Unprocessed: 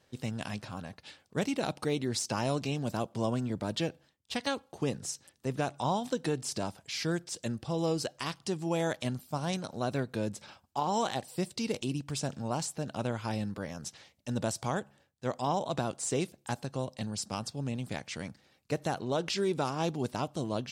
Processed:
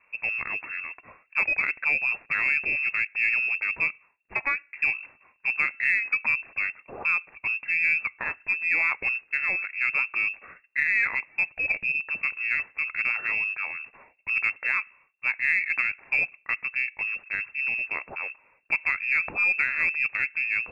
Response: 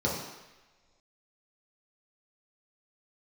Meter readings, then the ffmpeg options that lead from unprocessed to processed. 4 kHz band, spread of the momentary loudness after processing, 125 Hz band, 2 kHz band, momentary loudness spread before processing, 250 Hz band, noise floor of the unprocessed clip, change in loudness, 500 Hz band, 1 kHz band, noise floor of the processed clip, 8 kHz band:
below −15 dB, 8 LU, below −15 dB, +21.0 dB, 7 LU, below −15 dB, −70 dBFS, +9.0 dB, −14.5 dB, −3.5 dB, −65 dBFS, below −20 dB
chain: -af "acontrast=57,lowpass=frequency=2400:width_type=q:width=0.5098,lowpass=frequency=2400:width_type=q:width=0.6013,lowpass=frequency=2400:width_type=q:width=0.9,lowpass=frequency=2400:width_type=q:width=2.563,afreqshift=-2800,aeval=exprs='0.282*(cos(1*acos(clip(val(0)/0.282,-1,1)))-cos(1*PI/2))+0.00355*(cos(4*acos(clip(val(0)/0.282,-1,1)))-cos(4*PI/2))+0.00178*(cos(5*acos(clip(val(0)/0.282,-1,1)))-cos(5*PI/2))':channel_layout=same"

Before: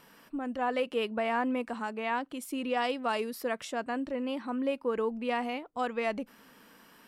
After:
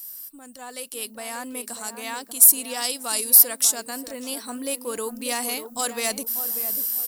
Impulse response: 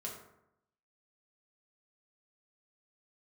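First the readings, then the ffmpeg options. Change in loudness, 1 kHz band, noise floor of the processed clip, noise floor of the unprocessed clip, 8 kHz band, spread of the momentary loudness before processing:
+13.5 dB, −1.5 dB, −45 dBFS, −58 dBFS, +31.5 dB, 6 LU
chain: -filter_complex "[0:a]highshelf=frequency=8100:gain=10,asplit=2[link_01][link_02];[link_02]adelay=590,lowpass=frequency=900:poles=1,volume=-9dB,asplit=2[link_03][link_04];[link_04]adelay=590,lowpass=frequency=900:poles=1,volume=0.39,asplit=2[link_05][link_06];[link_06]adelay=590,lowpass=frequency=900:poles=1,volume=0.39,asplit=2[link_07][link_08];[link_08]adelay=590,lowpass=frequency=900:poles=1,volume=0.39[link_09];[link_03][link_05][link_07][link_09]amix=inputs=4:normalize=0[link_10];[link_01][link_10]amix=inputs=2:normalize=0,crystalizer=i=4.5:c=0,dynaudnorm=framelen=390:gausssize=7:maxgain=13dB,volume=8.5dB,asoftclip=hard,volume=-8.5dB,aexciter=amount=5.6:drive=2.6:freq=3900,volume=-11.5dB"

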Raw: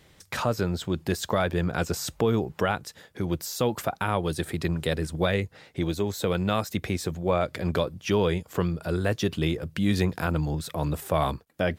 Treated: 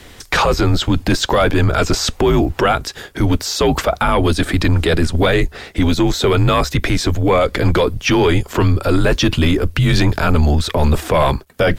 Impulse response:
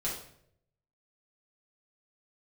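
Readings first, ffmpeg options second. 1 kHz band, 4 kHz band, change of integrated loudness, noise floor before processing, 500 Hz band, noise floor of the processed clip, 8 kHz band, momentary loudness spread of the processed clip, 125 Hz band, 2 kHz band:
+12.0 dB, +14.0 dB, +11.5 dB, −58 dBFS, +10.5 dB, −42 dBFS, +11.0 dB, 3 LU, +12.0 dB, +12.5 dB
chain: -filter_complex "[0:a]acrossover=split=6300[link_01][link_02];[link_02]acompressor=threshold=-55dB:ratio=4:attack=1:release=60[link_03];[link_01][link_03]amix=inputs=2:normalize=0,apsyclip=25.5dB,afreqshift=-72,volume=-8dB"

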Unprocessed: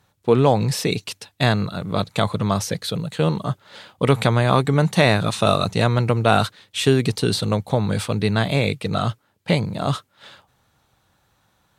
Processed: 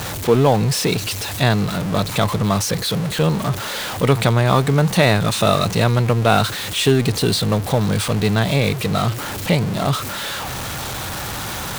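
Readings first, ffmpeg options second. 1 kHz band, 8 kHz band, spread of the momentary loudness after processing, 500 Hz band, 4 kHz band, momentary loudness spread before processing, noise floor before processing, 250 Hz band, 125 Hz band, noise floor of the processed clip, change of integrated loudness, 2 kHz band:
+2.0 dB, +7.5 dB, 9 LU, +1.5 dB, +4.5 dB, 9 LU, −65 dBFS, +2.5 dB, +3.0 dB, −27 dBFS, +2.0 dB, +3.0 dB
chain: -af "aeval=exprs='val(0)+0.5*0.0891*sgn(val(0))':channel_layout=same"

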